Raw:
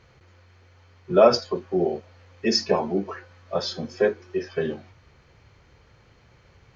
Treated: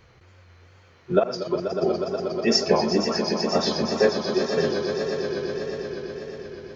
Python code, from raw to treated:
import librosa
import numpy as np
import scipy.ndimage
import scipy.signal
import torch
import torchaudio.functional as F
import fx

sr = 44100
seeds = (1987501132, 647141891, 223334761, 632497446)

y = fx.auto_swell(x, sr, attack_ms=380.0, at=(1.18, 1.82), fade=0.02)
y = fx.echo_swell(y, sr, ms=121, loudest=5, wet_db=-10)
y = fx.wow_flutter(y, sr, seeds[0], rate_hz=2.1, depth_cents=66.0)
y = y * 10.0 ** (1.5 / 20.0)